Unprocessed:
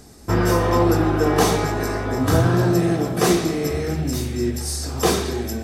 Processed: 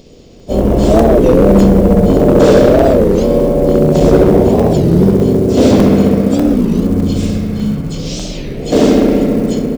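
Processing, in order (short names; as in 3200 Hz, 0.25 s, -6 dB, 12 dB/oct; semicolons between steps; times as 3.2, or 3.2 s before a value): harmoniser -5 st -7 dB, -4 st -11 dB, +3 st -11 dB; EQ curve 210 Hz 0 dB, 350 Hz +6 dB, 990 Hz +15 dB, 1500 Hz -3 dB, 3500 Hz -3 dB, 9600 Hz +3 dB; spring tank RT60 1.6 s, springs 38 ms, chirp 35 ms, DRR -3 dB; speed mistake 78 rpm record played at 45 rpm; short-mantissa float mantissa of 4-bit; crackling interface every 0.60 s, samples 128, zero, from 0.4; record warp 33 1/3 rpm, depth 250 cents; gain -2 dB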